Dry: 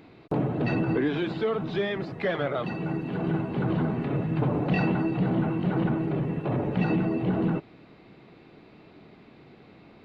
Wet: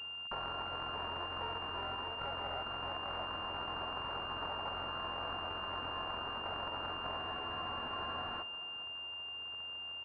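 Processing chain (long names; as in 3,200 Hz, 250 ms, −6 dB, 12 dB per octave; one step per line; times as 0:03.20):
samples sorted by size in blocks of 32 samples
high-pass filter 640 Hz 24 dB per octave
brickwall limiter −21 dBFS, peak gain reduction 11.5 dB
downward compressor, threshold −33 dBFS, peak gain reduction 4.5 dB
repeating echo 623 ms, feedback 28%, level −4 dB
frozen spectrum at 0:07.19, 1.22 s
switching amplifier with a slow clock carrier 2,800 Hz
level +1 dB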